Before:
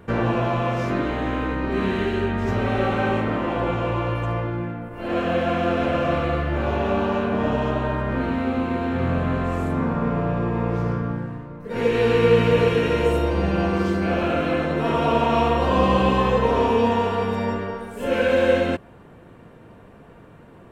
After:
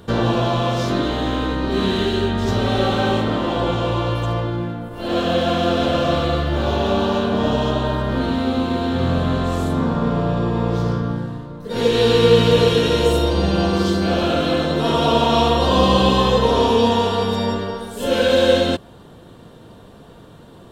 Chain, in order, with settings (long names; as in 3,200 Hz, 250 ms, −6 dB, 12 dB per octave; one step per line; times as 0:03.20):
high shelf with overshoot 2,900 Hz +7 dB, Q 3
level +3.5 dB